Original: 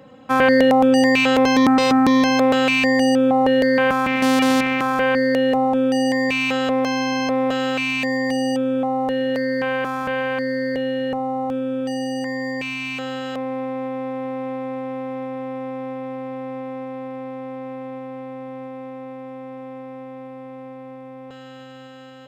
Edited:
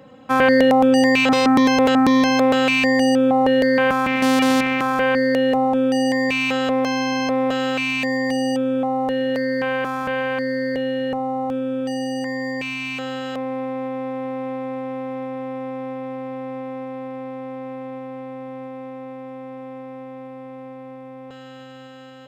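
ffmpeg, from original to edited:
-filter_complex "[0:a]asplit=3[s0][s1][s2];[s0]atrim=end=1.292[s3];[s1]atrim=start=1.288:end=1.952,asetpts=PTS-STARTPTS,areverse[s4];[s2]atrim=start=1.948[s5];[s3][s4]acrossfade=d=0.004:c1=hsin:c2=hsin[s6];[s6][s5]acrossfade=d=0.004:c1=hsin:c2=hsin"

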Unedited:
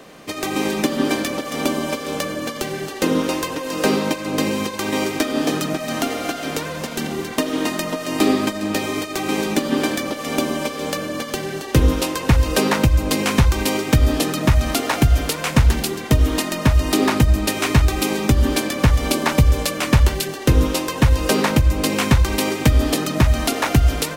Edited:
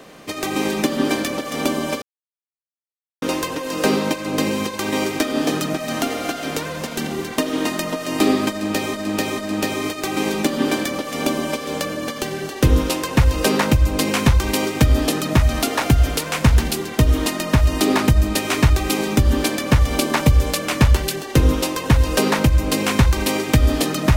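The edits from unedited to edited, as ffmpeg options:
-filter_complex "[0:a]asplit=5[s0][s1][s2][s3][s4];[s0]atrim=end=2.02,asetpts=PTS-STARTPTS,afade=t=out:st=2.016:d=0.004:c=hsin[s5];[s1]atrim=start=2.02:end=3.22,asetpts=PTS-STARTPTS,volume=0[s6];[s2]atrim=start=3.22:end=8.942,asetpts=PTS-STARTPTS,afade=t=in:d=0.004:c=hsin[s7];[s3]atrim=start=8.498:end=8.942[s8];[s4]atrim=start=8.498[s9];[s5][s6][s7]concat=n=3:v=0:a=1[s10];[s10][s8]acrossfade=d=0.004:c1=hsin:c2=hsin[s11];[s11][s9]acrossfade=d=0.004:c1=hsin:c2=hsin"

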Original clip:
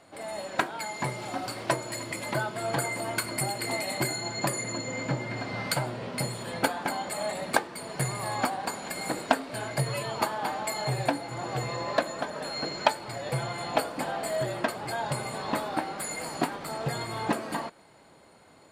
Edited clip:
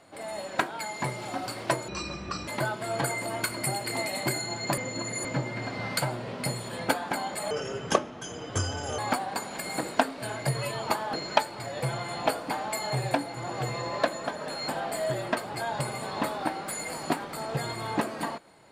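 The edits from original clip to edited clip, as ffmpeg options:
-filter_complex "[0:a]asplit=10[s0][s1][s2][s3][s4][s5][s6][s7][s8][s9];[s0]atrim=end=1.884[s10];[s1]atrim=start=1.88:end=2.22,asetpts=PTS-STARTPTS,asetrate=25137,aresample=44100,atrim=end_sample=26305,asetpts=PTS-STARTPTS[s11];[s2]atrim=start=2.216:end=4.522[s12];[s3]atrim=start=4.518:end=4.992,asetpts=PTS-STARTPTS,areverse[s13];[s4]atrim=start=4.988:end=7.254[s14];[s5]atrim=start=7.25:end=8.3,asetpts=PTS-STARTPTS,asetrate=31311,aresample=44100,atrim=end_sample=65218,asetpts=PTS-STARTPTS[s15];[s6]atrim=start=8.296:end=10.452[s16];[s7]atrim=start=12.628:end=14.002[s17];[s8]atrim=start=10.448:end=12.632[s18];[s9]atrim=start=13.998[s19];[s10][s11]acrossfade=d=0.004:c1=hsin:c2=hsin[s20];[s20][s12]acrossfade=d=0.004:c1=hsin:c2=hsin[s21];[s21][s13]acrossfade=d=0.004:c1=hsin:c2=hsin[s22];[s22][s14]acrossfade=d=0.004:c1=hsin:c2=hsin[s23];[s23][s15]acrossfade=d=0.004:c1=hsin:c2=hsin[s24];[s24][s16]acrossfade=d=0.004:c1=hsin:c2=hsin[s25];[s25][s17]acrossfade=d=0.004:c1=hsin:c2=hsin[s26];[s26][s18]acrossfade=d=0.004:c1=hsin:c2=hsin[s27];[s27][s19]acrossfade=d=0.004:c1=hsin:c2=hsin"

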